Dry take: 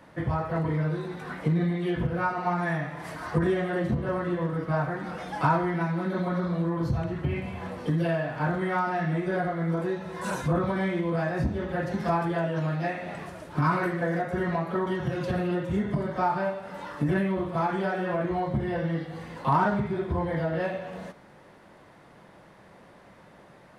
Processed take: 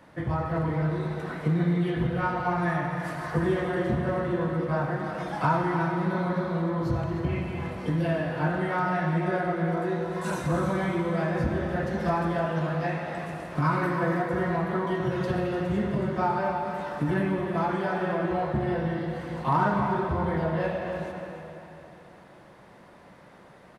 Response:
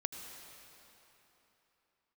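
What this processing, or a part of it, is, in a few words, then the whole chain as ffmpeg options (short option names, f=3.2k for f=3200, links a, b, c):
cave: -filter_complex "[0:a]aecho=1:1:301:0.299[a];[1:a]atrim=start_sample=2205[b];[a][b]afir=irnorm=-1:irlink=0"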